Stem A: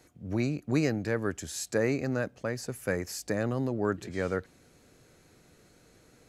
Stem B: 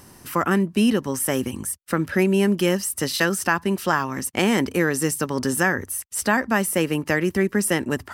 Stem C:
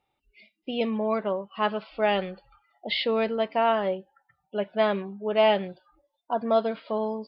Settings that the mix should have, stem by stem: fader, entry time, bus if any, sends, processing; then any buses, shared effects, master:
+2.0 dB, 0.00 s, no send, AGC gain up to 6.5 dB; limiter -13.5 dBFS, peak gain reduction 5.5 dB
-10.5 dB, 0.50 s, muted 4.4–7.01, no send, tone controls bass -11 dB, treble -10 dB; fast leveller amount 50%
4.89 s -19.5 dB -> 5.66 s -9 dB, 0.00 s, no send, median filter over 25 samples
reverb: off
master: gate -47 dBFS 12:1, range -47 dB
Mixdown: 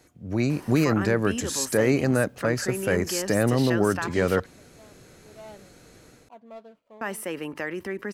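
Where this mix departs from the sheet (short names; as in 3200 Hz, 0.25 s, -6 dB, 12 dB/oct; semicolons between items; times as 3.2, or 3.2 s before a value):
stem C -19.5 dB -> -30.5 dB; master: missing gate -47 dBFS 12:1, range -47 dB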